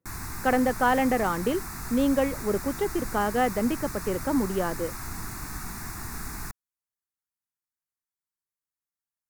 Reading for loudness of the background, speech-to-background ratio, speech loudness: −36.5 LKFS, 9.5 dB, −27.0 LKFS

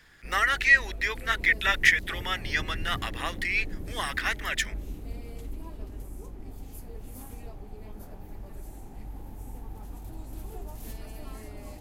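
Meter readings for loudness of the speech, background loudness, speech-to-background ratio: −25.5 LKFS, −42.0 LKFS, 16.5 dB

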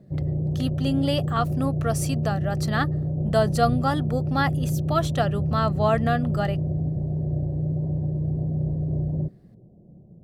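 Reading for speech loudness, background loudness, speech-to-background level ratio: −26.5 LKFS, −26.5 LKFS, 0.0 dB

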